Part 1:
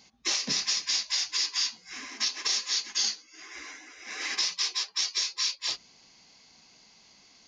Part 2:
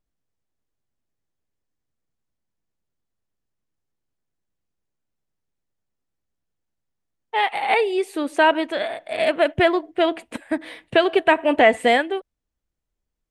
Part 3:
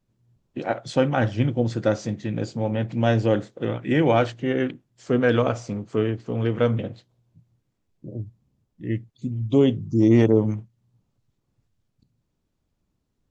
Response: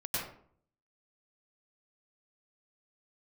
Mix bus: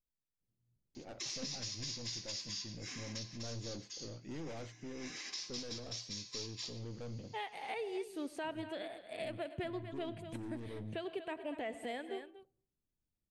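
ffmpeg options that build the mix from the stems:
-filter_complex "[0:a]acompressor=threshold=0.0112:ratio=2,adelay=950,volume=1.78,afade=t=out:st=2.86:d=0.47:silence=0.298538,afade=t=in:st=4.79:d=0.27:silence=0.473151,asplit=2[s0][s1];[s1]volume=0.2[s2];[1:a]volume=0.2,asplit=4[s3][s4][s5][s6];[s4]volume=0.0841[s7];[s5]volume=0.2[s8];[2:a]aeval=exprs='(tanh(15.8*val(0)+0.35)-tanh(0.35))/15.8':c=same,adelay=400,volume=0.168[s9];[s6]apad=whole_len=371699[s10];[s0][s10]sidechaincompress=threshold=0.0178:ratio=8:attack=16:release=712[s11];[3:a]atrim=start_sample=2205[s12];[s2][s7]amix=inputs=2:normalize=0[s13];[s13][s12]afir=irnorm=-1:irlink=0[s14];[s8]aecho=0:1:239:1[s15];[s11][s3][s9][s14][s15]amix=inputs=5:normalize=0,equalizer=f=1300:t=o:w=2.5:g=-7.5,alimiter=level_in=2.37:limit=0.0631:level=0:latency=1:release=281,volume=0.422"

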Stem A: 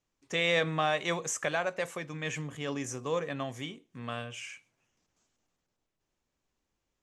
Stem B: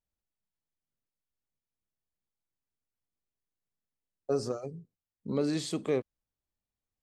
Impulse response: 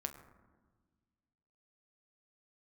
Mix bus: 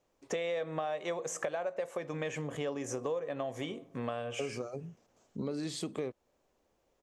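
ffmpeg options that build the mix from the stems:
-filter_complex "[0:a]acompressor=threshold=0.0126:ratio=1.5,equalizer=f=560:t=o:w=1.6:g=13.5,volume=1.12,asplit=2[s0][s1];[s1]volume=0.237[s2];[1:a]adelay=100,volume=0.944[s3];[2:a]atrim=start_sample=2205[s4];[s2][s4]afir=irnorm=-1:irlink=0[s5];[s0][s3][s5]amix=inputs=3:normalize=0,acompressor=threshold=0.0224:ratio=6"

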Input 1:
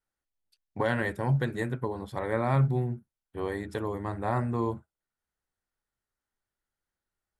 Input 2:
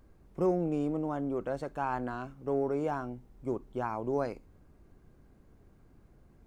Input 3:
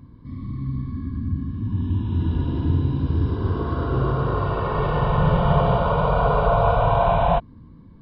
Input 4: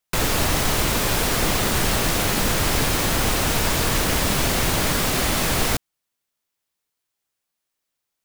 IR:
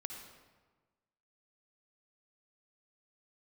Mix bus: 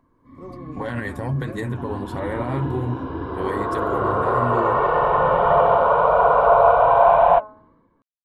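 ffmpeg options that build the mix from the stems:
-filter_complex "[0:a]volume=0.891[s0];[1:a]alimiter=level_in=2.11:limit=0.0631:level=0:latency=1,volume=0.473,volume=0.398[s1];[2:a]acrossover=split=390 2000:gain=0.0794 1 0.112[s2][s3][s4];[s2][s3][s4]amix=inputs=3:normalize=0,bandreject=f=213.2:t=h:w=4,bandreject=f=426.4:t=h:w=4,bandreject=f=639.6:t=h:w=4,bandreject=f=852.8:t=h:w=4,bandreject=f=1066:t=h:w=4,bandreject=f=1279.2:t=h:w=4,bandreject=f=1492.4:t=h:w=4,bandreject=f=1705.6:t=h:w=4,flanger=delay=1.5:depth=2.4:regen=82:speed=1.8:shape=sinusoidal,volume=1.26[s5];[s0][s1]amix=inputs=2:normalize=0,flanger=delay=5.4:depth=6.4:regen=33:speed=1.3:shape=triangular,alimiter=level_in=1.78:limit=0.0631:level=0:latency=1:release=65,volume=0.562,volume=1[s6];[s5][s6]amix=inputs=2:normalize=0,dynaudnorm=f=110:g=7:m=3.55"

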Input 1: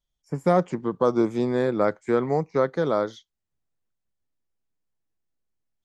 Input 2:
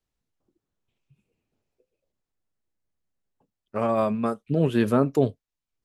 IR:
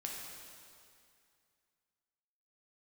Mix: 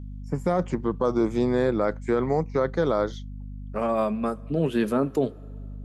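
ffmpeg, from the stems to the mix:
-filter_complex "[0:a]aeval=exprs='val(0)+0.0141*(sin(2*PI*50*n/s)+sin(2*PI*2*50*n/s)/2+sin(2*PI*3*50*n/s)/3+sin(2*PI*4*50*n/s)/4+sin(2*PI*5*50*n/s)/5)':c=same,volume=1.19[s0];[1:a]highpass=f=150:w=0.5412,highpass=f=150:w=1.3066,volume=0.841,asplit=3[s1][s2][s3];[s2]volume=0.0944[s4];[s3]apad=whole_len=257647[s5];[s0][s5]sidechaincompress=threshold=0.0398:ratio=8:attack=16:release=390[s6];[2:a]atrim=start_sample=2205[s7];[s4][s7]afir=irnorm=-1:irlink=0[s8];[s6][s1][s8]amix=inputs=3:normalize=0,alimiter=limit=0.211:level=0:latency=1:release=17"

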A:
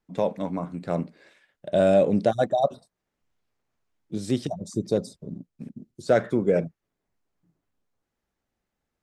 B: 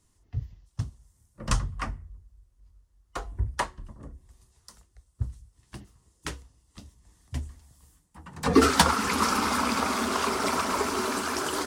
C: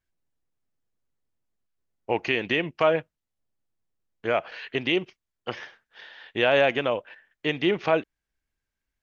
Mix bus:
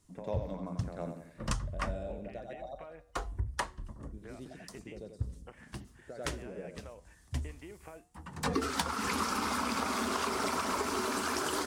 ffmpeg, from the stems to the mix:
-filter_complex "[0:a]volume=0.355,afade=t=out:st=1.38:d=0.34:silence=0.281838,asplit=2[s0][s1];[s1]volume=0.668[s2];[1:a]acompressor=threshold=0.0398:ratio=8,volume=0.891[s3];[2:a]acompressor=threshold=0.0224:ratio=2.5,flanger=delay=7:depth=4.4:regen=-86:speed=0.48:shape=sinusoidal,volume=0.335[s4];[s0][s4]amix=inputs=2:normalize=0,lowpass=f=2400:w=0.5412,lowpass=f=2400:w=1.3066,acompressor=threshold=0.00631:ratio=6,volume=1[s5];[s2]aecho=0:1:90|180|270|360|450|540:1|0.42|0.176|0.0741|0.0311|0.0131[s6];[s3][s5][s6]amix=inputs=3:normalize=0"

